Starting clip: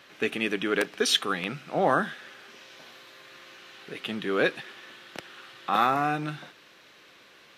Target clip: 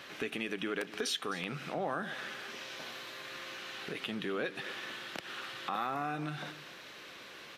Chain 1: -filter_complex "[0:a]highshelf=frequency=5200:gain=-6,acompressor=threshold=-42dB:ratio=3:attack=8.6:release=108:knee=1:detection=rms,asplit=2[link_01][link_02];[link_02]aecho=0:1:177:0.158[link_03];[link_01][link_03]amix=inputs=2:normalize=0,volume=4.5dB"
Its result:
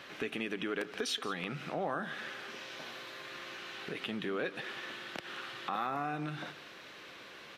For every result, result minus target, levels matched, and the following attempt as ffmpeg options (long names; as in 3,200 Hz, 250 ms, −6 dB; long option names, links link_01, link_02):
echo 82 ms early; 8,000 Hz band −3.0 dB
-filter_complex "[0:a]highshelf=frequency=5200:gain=-6,acompressor=threshold=-42dB:ratio=3:attack=8.6:release=108:knee=1:detection=rms,asplit=2[link_01][link_02];[link_02]aecho=0:1:259:0.158[link_03];[link_01][link_03]amix=inputs=2:normalize=0,volume=4.5dB"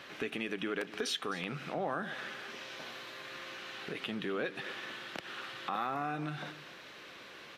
8,000 Hz band −3.0 dB
-filter_complex "[0:a]acompressor=threshold=-42dB:ratio=3:attack=8.6:release=108:knee=1:detection=rms,asplit=2[link_01][link_02];[link_02]aecho=0:1:259:0.158[link_03];[link_01][link_03]amix=inputs=2:normalize=0,volume=4.5dB"